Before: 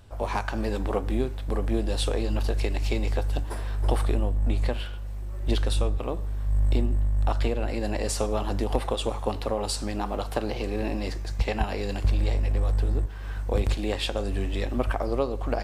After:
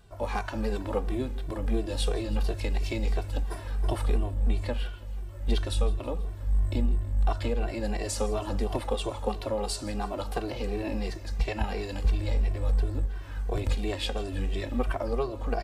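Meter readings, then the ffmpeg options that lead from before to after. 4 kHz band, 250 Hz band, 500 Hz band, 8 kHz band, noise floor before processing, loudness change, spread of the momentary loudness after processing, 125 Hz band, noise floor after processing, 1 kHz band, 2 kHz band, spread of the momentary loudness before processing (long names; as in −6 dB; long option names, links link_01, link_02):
−3.0 dB, −2.5 dB, −3.0 dB, −3.0 dB, −33 dBFS, −2.5 dB, 5 LU, −3.0 dB, −39 dBFS, −3.0 dB, −3.0 dB, 5 LU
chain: -filter_complex "[0:a]aecho=1:1:162|324|486|648|810:0.112|0.0617|0.0339|0.0187|0.0103,asplit=2[link_01][link_02];[link_02]adelay=2.1,afreqshift=-2.9[link_03];[link_01][link_03]amix=inputs=2:normalize=1"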